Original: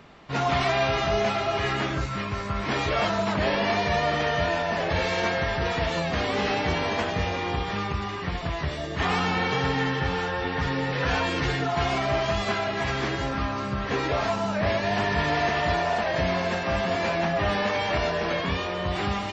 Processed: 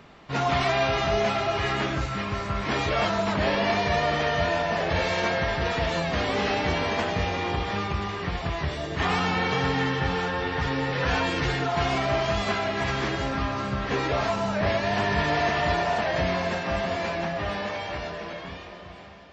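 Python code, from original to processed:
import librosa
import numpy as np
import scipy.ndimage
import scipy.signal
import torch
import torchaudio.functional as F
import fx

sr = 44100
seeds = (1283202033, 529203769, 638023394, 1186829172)

y = fx.fade_out_tail(x, sr, length_s=3.25)
y = fx.echo_heads(y, sr, ms=233, heads='second and third', feedback_pct=59, wet_db=-17.5)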